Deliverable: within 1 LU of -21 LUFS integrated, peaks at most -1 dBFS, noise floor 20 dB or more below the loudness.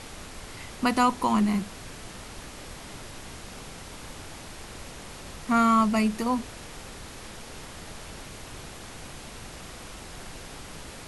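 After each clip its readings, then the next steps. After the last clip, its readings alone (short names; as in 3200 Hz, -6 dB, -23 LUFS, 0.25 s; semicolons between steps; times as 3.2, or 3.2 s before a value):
noise floor -43 dBFS; noise floor target -45 dBFS; loudness -25.0 LUFS; peak -11.5 dBFS; loudness target -21.0 LUFS
-> noise print and reduce 6 dB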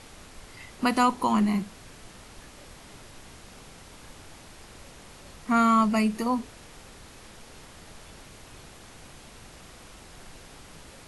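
noise floor -49 dBFS; loudness -24.5 LUFS; peak -11.5 dBFS; loudness target -21.0 LUFS
-> gain +3.5 dB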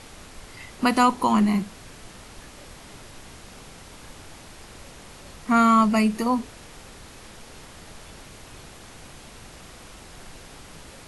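loudness -21.0 LUFS; peak -8.0 dBFS; noise floor -45 dBFS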